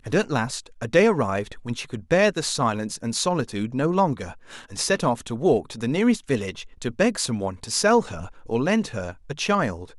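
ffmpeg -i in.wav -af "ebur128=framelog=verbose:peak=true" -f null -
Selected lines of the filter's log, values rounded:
Integrated loudness:
  I:         -23.6 LUFS
  Threshold: -33.9 LUFS
Loudness range:
  LRA:         1.3 LU
  Threshold: -43.9 LUFS
  LRA low:   -24.5 LUFS
  LRA high:  -23.2 LUFS
True peak:
  Peak:       -4.7 dBFS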